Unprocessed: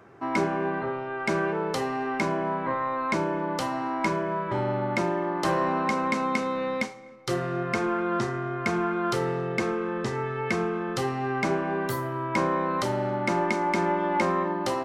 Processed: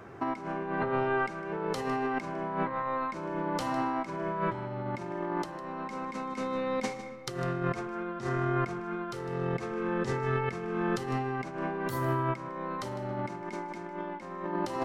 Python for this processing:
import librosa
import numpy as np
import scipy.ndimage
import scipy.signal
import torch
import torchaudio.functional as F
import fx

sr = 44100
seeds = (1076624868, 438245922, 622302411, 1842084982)

p1 = fx.low_shelf(x, sr, hz=60.0, db=10.0)
p2 = fx.over_compress(p1, sr, threshold_db=-31.0, ratio=-0.5)
p3 = p2 + fx.echo_single(p2, sr, ms=154, db=-15.0, dry=0)
y = F.gain(torch.from_numpy(p3), -1.0).numpy()